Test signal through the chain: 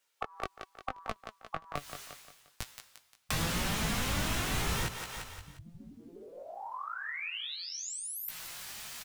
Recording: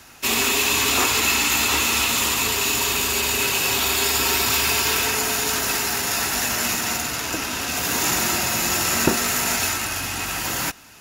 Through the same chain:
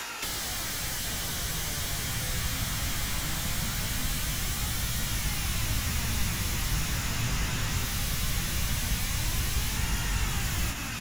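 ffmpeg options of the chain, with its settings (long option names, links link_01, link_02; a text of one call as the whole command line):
ffmpeg -i in.wav -filter_complex "[0:a]areverse,acompressor=mode=upward:threshold=-30dB:ratio=2.5,areverse,afftfilt=real='re*lt(hypot(re,im),0.112)':imag='im*lt(hypot(re,im),0.112)':win_size=1024:overlap=0.75,flanger=delay=17.5:depth=3:speed=0.83,adynamicequalizer=threshold=0.00316:dfrequency=4600:dqfactor=4.8:tfrequency=4600:tqfactor=4.8:attack=5:release=100:ratio=0.375:range=2:mode=cutabove:tftype=bell,flanger=delay=2.1:depth=5.8:regen=58:speed=0.2:shape=sinusoidal,aecho=1:1:176|352|528|704:0.178|0.0729|0.0299|0.0123,asplit=2[link_01][link_02];[link_02]highpass=frequency=720:poles=1,volume=21dB,asoftclip=type=tanh:threshold=-14.5dB[link_03];[link_01][link_03]amix=inputs=2:normalize=0,lowpass=frequency=6300:poles=1,volume=-6dB,asoftclip=type=hard:threshold=-24dB,acrossover=split=290[link_04][link_05];[link_05]acompressor=threshold=-42dB:ratio=5[link_06];[link_04][link_06]amix=inputs=2:normalize=0,asubboost=boost=8:cutoff=130,volume=7.5dB" out.wav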